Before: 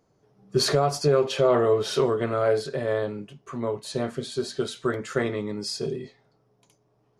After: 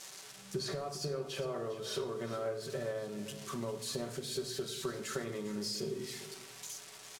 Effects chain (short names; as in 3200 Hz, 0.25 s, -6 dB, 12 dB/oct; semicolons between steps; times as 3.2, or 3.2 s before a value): switching spikes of -26 dBFS; LPF 8700 Hz 12 dB/oct; compressor 12:1, threshold -30 dBFS, peak gain reduction 15 dB; echo 0.402 s -14.5 dB; on a send at -5.5 dB: reverb RT60 0.85 s, pre-delay 5 ms; on the sum: gain -6 dB